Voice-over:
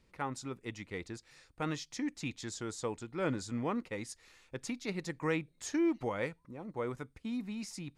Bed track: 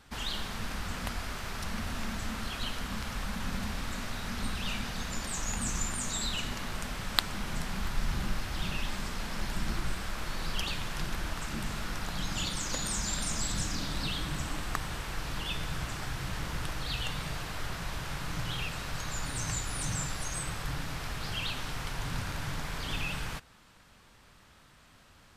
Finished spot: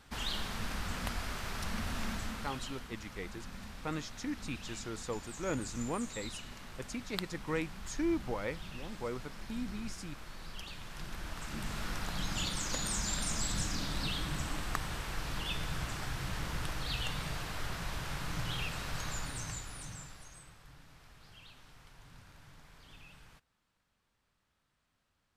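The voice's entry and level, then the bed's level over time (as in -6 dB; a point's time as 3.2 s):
2.25 s, -2.0 dB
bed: 2.11 s -1.5 dB
2.91 s -12 dB
10.69 s -12 dB
11.86 s -2 dB
19.08 s -2 dB
20.58 s -21 dB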